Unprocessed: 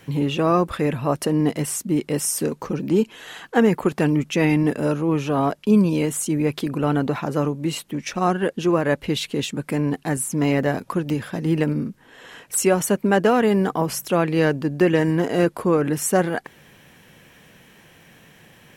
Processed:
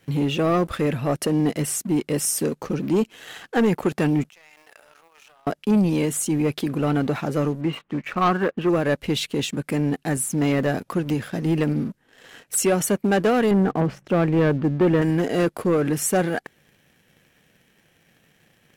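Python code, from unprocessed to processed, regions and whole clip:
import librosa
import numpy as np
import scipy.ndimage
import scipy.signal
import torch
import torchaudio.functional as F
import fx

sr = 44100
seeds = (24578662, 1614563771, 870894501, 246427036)

y = fx.chain(x, sr, fx.law_mismatch(coded='mu'),
    fx.highpass(hz=740.0, slope=24),
    fx.level_steps(step_db=23), at=(4.29, 5.47))
y = fx.chain(y, sr, fx.lowpass(hz=2700.0, slope=24),
    fx.peak_eq(hz=1100.0, db=11.5, octaves=0.61), at=(7.61, 8.69))
y = fx.chain(y, sr, fx.lowpass(hz=2000.0, slope=12),
    fx.low_shelf(hz=340.0, db=5.0), at=(13.51, 15.02))
y = fx.peak_eq(y, sr, hz=1000.0, db=-7.5, octaves=0.28)
y = fx.leveller(y, sr, passes=2)
y = y * 10.0 ** (-7.0 / 20.0)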